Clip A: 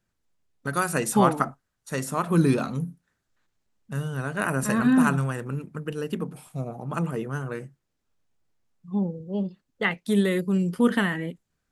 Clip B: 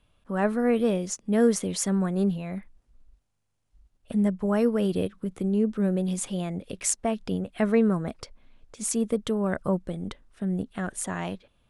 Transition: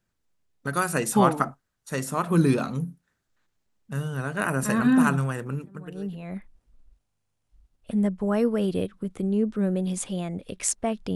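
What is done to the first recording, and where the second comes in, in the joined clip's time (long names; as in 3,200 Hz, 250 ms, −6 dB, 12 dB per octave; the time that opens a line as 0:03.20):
clip A
0:05.96: continue with clip B from 0:02.17, crossfade 0.82 s quadratic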